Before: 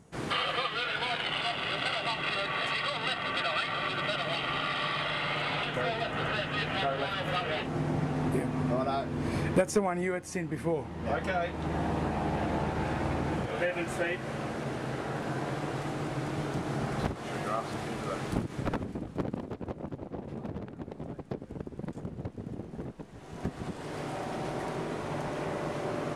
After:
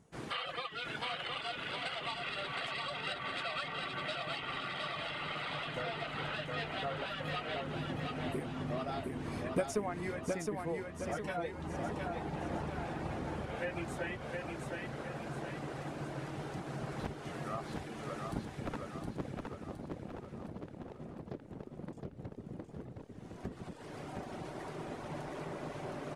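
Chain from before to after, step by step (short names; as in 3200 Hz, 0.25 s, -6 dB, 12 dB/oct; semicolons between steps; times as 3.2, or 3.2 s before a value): reverb removal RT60 0.87 s; feedback echo 0.715 s, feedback 48%, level -3.5 dB; gain -7.5 dB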